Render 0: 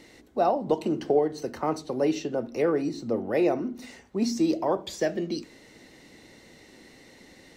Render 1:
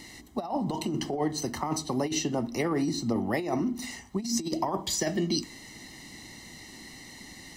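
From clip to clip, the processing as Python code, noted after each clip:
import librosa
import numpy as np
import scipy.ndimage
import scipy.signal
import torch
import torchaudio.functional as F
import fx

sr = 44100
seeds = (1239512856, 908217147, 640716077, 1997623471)

y = fx.bass_treble(x, sr, bass_db=1, treble_db=8)
y = y + 0.66 * np.pad(y, (int(1.0 * sr / 1000.0), 0))[:len(y)]
y = fx.over_compress(y, sr, threshold_db=-27.0, ratio=-0.5)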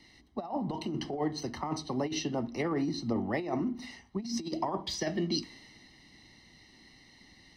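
y = scipy.signal.savgol_filter(x, 15, 4, mode='constant')
y = fx.band_widen(y, sr, depth_pct=40)
y = F.gain(torch.from_numpy(y), -3.5).numpy()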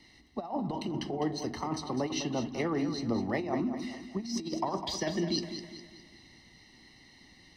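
y = fx.echo_feedback(x, sr, ms=204, feedback_pct=43, wet_db=-9.5)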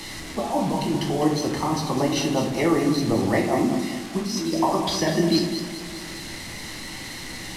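y = fx.delta_mod(x, sr, bps=64000, step_db=-39.0)
y = fx.room_shoebox(y, sr, seeds[0], volume_m3=100.0, walls='mixed', distance_m=0.69)
y = F.gain(torch.from_numpy(y), 7.5).numpy()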